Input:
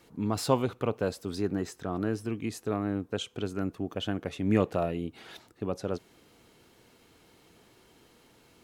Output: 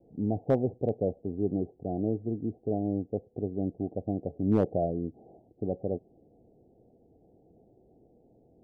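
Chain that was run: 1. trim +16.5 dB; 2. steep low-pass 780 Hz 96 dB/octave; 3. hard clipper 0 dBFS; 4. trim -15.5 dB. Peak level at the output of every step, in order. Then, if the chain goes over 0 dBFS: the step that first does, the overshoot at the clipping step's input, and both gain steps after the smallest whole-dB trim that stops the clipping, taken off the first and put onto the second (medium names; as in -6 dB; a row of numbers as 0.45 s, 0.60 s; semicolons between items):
+7.0 dBFS, +4.5 dBFS, 0.0 dBFS, -15.5 dBFS; step 1, 4.5 dB; step 1 +11.5 dB, step 4 -10.5 dB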